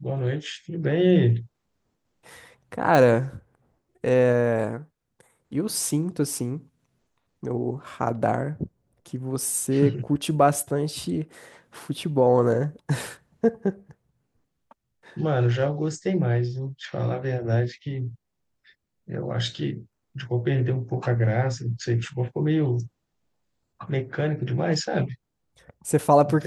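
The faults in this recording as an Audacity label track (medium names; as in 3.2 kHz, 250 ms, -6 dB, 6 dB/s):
2.950000	2.950000	pop -9 dBFS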